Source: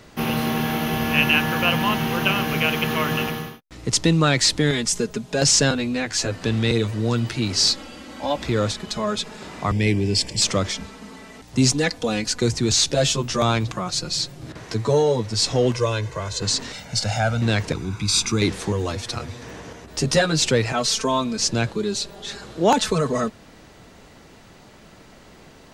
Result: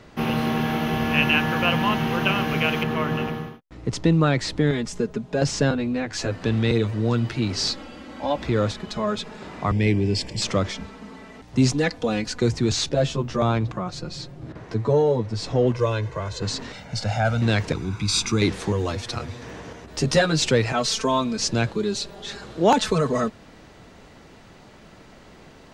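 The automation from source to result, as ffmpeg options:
-af "asetnsamples=n=441:p=0,asendcmd='2.83 lowpass f 1200;6.13 lowpass f 2400;12.89 lowpass f 1100;15.79 lowpass f 2100;17.25 lowpass f 5000',lowpass=f=3100:p=1"

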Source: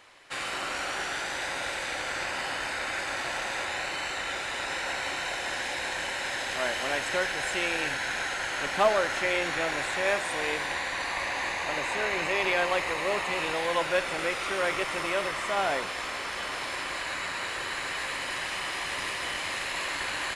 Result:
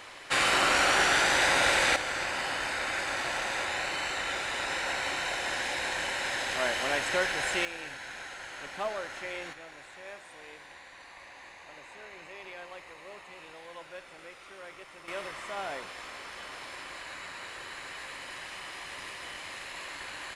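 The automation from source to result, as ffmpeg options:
-af "asetnsamples=n=441:p=0,asendcmd='1.96 volume volume 0dB;7.65 volume volume -11dB;9.53 volume volume -18.5dB;15.08 volume volume -9dB',volume=2.66"

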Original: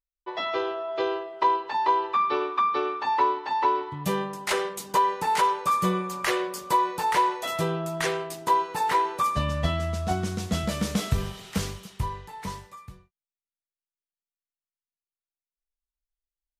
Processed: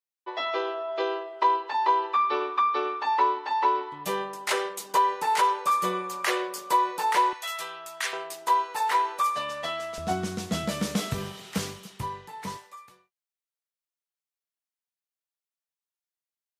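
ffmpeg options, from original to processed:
-af "asetnsamples=n=441:p=0,asendcmd='7.33 highpass f 1300;8.13 highpass f 580;9.98 highpass f 150;12.57 highpass f 490',highpass=360"

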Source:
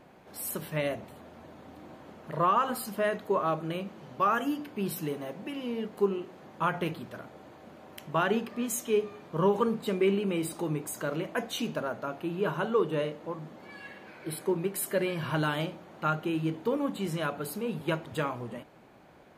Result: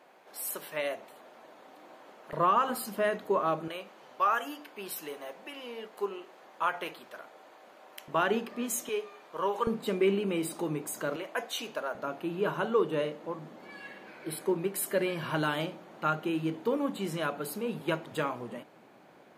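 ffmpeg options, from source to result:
-af "asetnsamples=n=441:p=0,asendcmd='2.33 highpass f 180;3.68 highpass f 570;8.08 highpass f 230;8.89 highpass f 590;9.67 highpass f 180;11.16 highpass f 490;11.95 highpass f 180',highpass=480"

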